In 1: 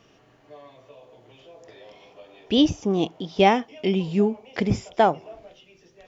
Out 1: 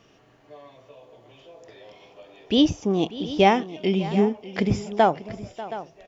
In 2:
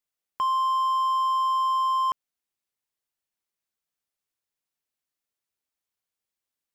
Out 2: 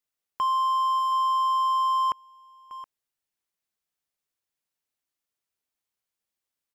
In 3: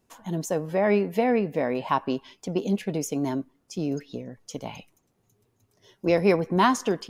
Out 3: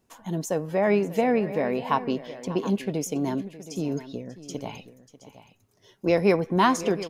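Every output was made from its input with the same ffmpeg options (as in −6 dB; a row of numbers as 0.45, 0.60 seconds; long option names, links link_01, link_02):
-af "aecho=1:1:591|721:0.141|0.178"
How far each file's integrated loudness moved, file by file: −0.5, 0.0, 0.0 LU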